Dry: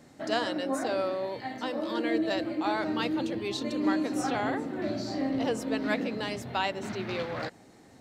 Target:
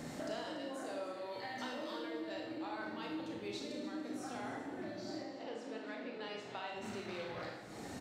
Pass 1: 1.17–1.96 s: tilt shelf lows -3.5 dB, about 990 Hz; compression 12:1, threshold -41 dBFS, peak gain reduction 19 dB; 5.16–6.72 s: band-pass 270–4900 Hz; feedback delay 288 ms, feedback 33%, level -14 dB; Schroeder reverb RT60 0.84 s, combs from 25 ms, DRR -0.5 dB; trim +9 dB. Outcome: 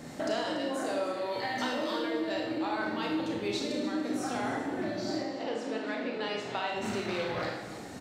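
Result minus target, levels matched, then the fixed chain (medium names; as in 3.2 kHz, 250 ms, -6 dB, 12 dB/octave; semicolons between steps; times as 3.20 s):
compression: peak gain reduction -10.5 dB
1.17–1.96 s: tilt shelf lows -3.5 dB, about 990 Hz; compression 12:1, threshold -52.5 dBFS, peak gain reduction 30 dB; 5.16–6.72 s: band-pass 270–4900 Hz; feedback delay 288 ms, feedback 33%, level -14 dB; Schroeder reverb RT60 0.84 s, combs from 25 ms, DRR -0.5 dB; trim +9 dB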